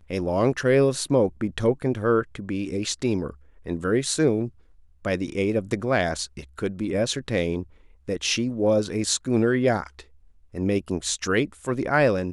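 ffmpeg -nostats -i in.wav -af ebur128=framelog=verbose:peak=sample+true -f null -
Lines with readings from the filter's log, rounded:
Integrated loudness:
  I:         -24.5 LUFS
  Threshold: -34.9 LUFS
Loudness range:
  LRA:         2.7 LU
  Threshold: -45.4 LUFS
  LRA low:   -26.8 LUFS
  LRA high:  -24.1 LUFS
Sample peak:
  Peak:       -7.6 dBFS
True peak:
  Peak:       -7.6 dBFS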